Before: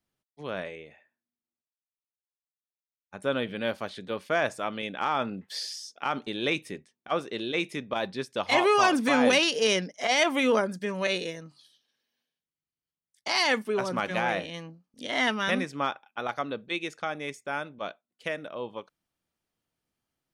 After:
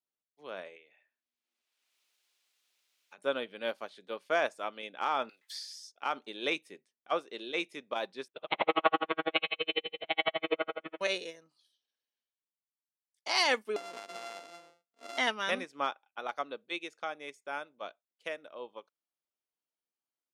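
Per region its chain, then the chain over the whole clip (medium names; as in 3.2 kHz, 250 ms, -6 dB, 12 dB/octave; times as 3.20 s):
0.76–3.18 s: frequency weighting D + three bands compressed up and down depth 100%
5.29–5.92 s: high-pass 1 kHz + peaking EQ 2.8 kHz -6.5 dB 0.32 oct + three bands compressed up and down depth 70%
8.28–11.01 s: monotone LPC vocoder at 8 kHz 160 Hz + flutter echo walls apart 10.1 m, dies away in 1.5 s + logarithmic tremolo 12 Hz, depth 37 dB
13.76–15.18 s: sorted samples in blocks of 64 samples + band-pass 250–7300 Hz + compression 8:1, threshold -30 dBFS
whole clip: high-pass 350 Hz 12 dB/octave; peaking EQ 1.8 kHz -3 dB 0.38 oct; upward expansion 1.5:1, over -47 dBFS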